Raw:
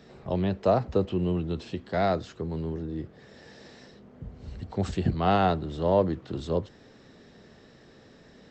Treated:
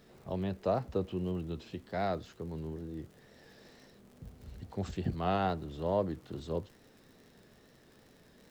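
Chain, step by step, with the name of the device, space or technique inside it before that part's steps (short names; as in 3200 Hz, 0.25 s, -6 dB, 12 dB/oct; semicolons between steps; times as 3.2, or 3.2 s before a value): vinyl LP (wow and flutter; crackle 70/s -41 dBFS; pink noise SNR 33 dB); gain -8 dB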